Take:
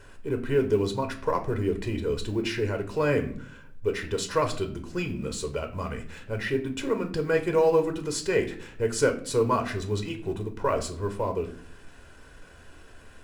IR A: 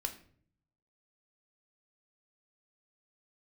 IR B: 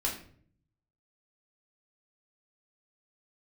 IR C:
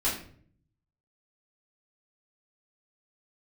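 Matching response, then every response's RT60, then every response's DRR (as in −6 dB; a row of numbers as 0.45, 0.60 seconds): A; 0.55, 0.55, 0.55 seconds; 5.5, −3.0, −9.0 decibels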